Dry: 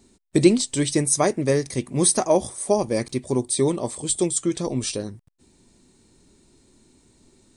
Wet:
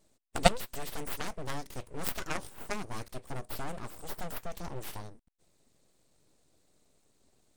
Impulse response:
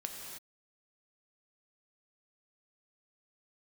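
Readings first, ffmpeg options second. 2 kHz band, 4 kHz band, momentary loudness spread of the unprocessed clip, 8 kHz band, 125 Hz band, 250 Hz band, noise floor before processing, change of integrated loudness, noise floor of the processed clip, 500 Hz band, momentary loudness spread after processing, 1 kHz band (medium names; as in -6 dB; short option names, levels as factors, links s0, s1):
-4.5 dB, -9.0 dB, 8 LU, -20.5 dB, -14.5 dB, -20.0 dB, -60 dBFS, -14.5 dB, -70 dBFS, -16.5 dB, 15 LU, -6.5 dB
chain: -af "aeval=exprs='abs(val(0))':c=same,aeval=exprs='0.75*(cos(1*acos(clip(val(0)/0.75,-1,1)))-cos(1*PI/2))+0.335*(cos(3*acos(clip(val(0)/0.75,-1,1)))-cos(3*PI/2))':c=same,volume=0.891"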